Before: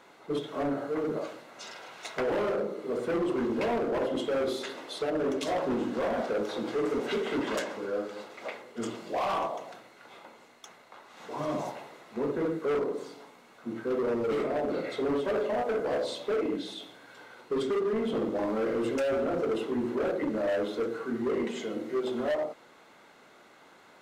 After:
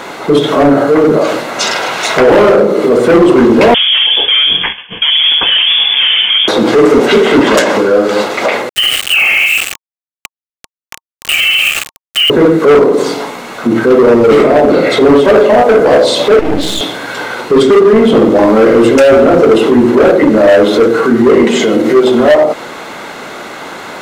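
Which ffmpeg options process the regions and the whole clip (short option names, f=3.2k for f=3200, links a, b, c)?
-filter_complex "[0:a]asettb=1/sr,asplit=3[a][b][c];[a]atrim=end=3.744[d];[b]atrim=start=3.74:end=6.48,asetpts=PTS-STARTPTS,afade=t=in:d=0.004:c=qsin,afade=t=out:st=2.736:d=0.004:c=qsin,agate=range=-33dB:threshold=-33dB:ratio=3:release=100:detection=peak,lowshelf=f=300:g=-10,lowpass=f=3.1k:t=q:w=0.5098,lowpass=f=3.1k:t=q:w=0.6013,lowpass=f=3.1k:t=q:w=0.9,lowpass=f=3.1k:t=q:w=2.563,afreqshift=-3700[e];[c]atrim=start=6.476[f];[d][e]acrossfade=d=0.004:c1=hsin:c2=qsin[g];[g][f]acrossfade=d=0.004:c1=qsin:c2=hsin,asettb=1/sr,asplit=3[h][i][j];[h]atrim=end=8.694[k];[i]atrim=start=8.69:end=12.3,asetpts=PTS-STARTPTS,afade=t=in:d=0.004:c=qsin,afade=t=out:st=3.606:d=0.004:c=qsin,lowpass=f=2.8k:t=q:w=0.5098,lowpass=f=2.8k:t=q:w=0.6013,lowpass=f=2.8k:t=q:w=0.9,lowpass=f=2.8k:t=q:w=2.563,afreqshift=-3300,aeval=exprs='val(0)*gte(abs(val(0)),0.0112)':c=same,asuperstop=centerf=1000:order=8:qfactor=5.9[l];[j]atrim=start=12.296[m];[k][l]acrossfade=d=0.004:c1=hsin:c2=qsin[n];[n][m]acrossfade=d=0.004:c1=qsin:c2=hsin,asettb=1/sr,asplit=3[o][p][q];[o]atrim=end=16.394[r];[p]atrim=start=16.39:end=16.81,asetpts=PTS-STARTPTS,afade=t=in:d=0.004:c=qsin,afade=t=out:st=0.416:d=0.004:c=qsin,acompressor=threshold=-34dB:ratio=6:attack=3.2:release=140:knee=1:detection=peak,aeval=exprs='max(val(0),0)':c=same[s];[q]atrim=start=16.806[t];[r][s]acrossfade=d=0.004:c1=hsin:c2=qsin[u];[u][t]acrossfade=d=0.004:c1=qsin:c2=hsin,acompressor=threshold=-33dB:ratio=6,alimiter=level_in=31.5dB:limit=-1dB:release=50:level=0:latency=1,volume=-1dB"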